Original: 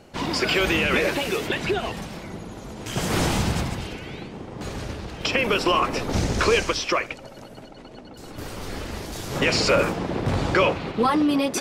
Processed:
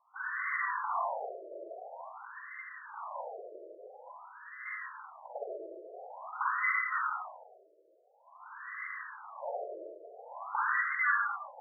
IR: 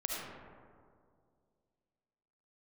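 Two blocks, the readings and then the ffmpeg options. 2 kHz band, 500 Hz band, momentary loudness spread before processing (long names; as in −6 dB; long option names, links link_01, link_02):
−7.5 dB, −19.0 dB, 17 LU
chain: -filter_complex "[0:a]asplit=2[link_01][link_02];[link_02]alimiter=limit=-15.5dB:level=0:latency=1,volume=-2.5dB[link_03];[link_01][link_03]amix=inputs=2:normalize=0,lowpass=frequency=2100:width_type=q:width=0.5098,lowpass=frequency=2100:width_type=q:width=0.6013,lowpass=frequency=2100:width_type=q:width=0.9,lowpass=frequency=2100:width_type=q:width=2.563,afreqshift=-2500[link_04];[1:a]atrim=start_sample=2205,asetrate=70560,aresample=44100[link_05];[link_04][link_05]afir=irnorm=-1:irlink=0,afftfilt=real='re*between(b*sr/1024,460*pow(1500/460,0.5+0.5*sin(2*PI*0.48*pts/sr))/1.41,460*pow(1500/460,0.5+0.5*sin(2*PI*0.48*pts/sr))*1.41)':imag='im*between(b*sr/1024,460*pow(1500/460,0.5+0.5*sin(2*PI*0.48*pts/sr))/1.41,460*pow(1500/460,0.5+0.5*sin(2*PI*0.48*pts/sr))*1.41)':win_size=1024:overlap=0.75,volume=-7dB"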